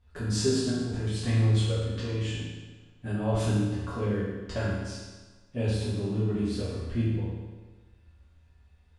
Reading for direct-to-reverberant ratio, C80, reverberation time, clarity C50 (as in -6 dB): -11.0 dB, 1.0 dB, 1.3 s, -1.5 dB